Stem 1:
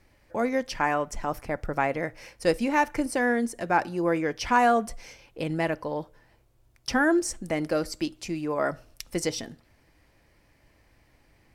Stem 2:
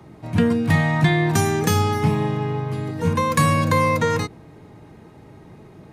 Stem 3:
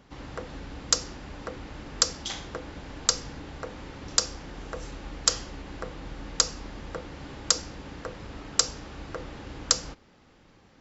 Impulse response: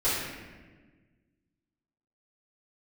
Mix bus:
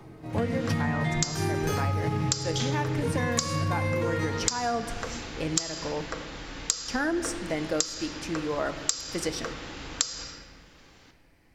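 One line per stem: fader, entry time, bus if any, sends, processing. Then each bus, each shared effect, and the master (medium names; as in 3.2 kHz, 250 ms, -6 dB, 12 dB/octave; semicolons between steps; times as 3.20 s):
-2.0 dB, 0.00 s, send -22.5 dB, none
-2.5 dB, 0.00 s, send -14 dB, auto duck -9 dB, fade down 0.20 s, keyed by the first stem
+2.0 dB, 0.30 s, send -16 dB, tilt shelf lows -6 dB, about 1.3 kHz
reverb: on, RT60 1.4 s, pre-delay 3 ms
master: compression 16:1, threshold -23 dBFS, peak gain reduction 17 dB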